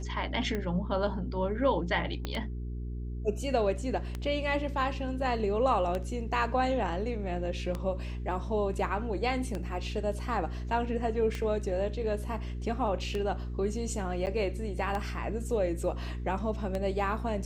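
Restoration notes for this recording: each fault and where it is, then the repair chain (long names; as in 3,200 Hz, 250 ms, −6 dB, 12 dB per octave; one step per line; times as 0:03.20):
mains hum 60 Hz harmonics 7 −36 dBFS
scratch tick 33 1/3 rpm −20 dBFS
0:02.25: click −19 dBFS
0:14.26–0:14.27: drop-out 9.1 ms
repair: click removal
hum removal 60 Hz, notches 7
repair the gap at 0:14.26, 9.1 ms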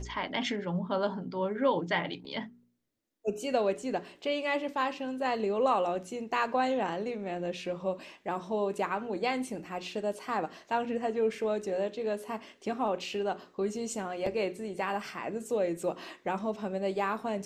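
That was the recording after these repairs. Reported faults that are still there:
0:02.25: click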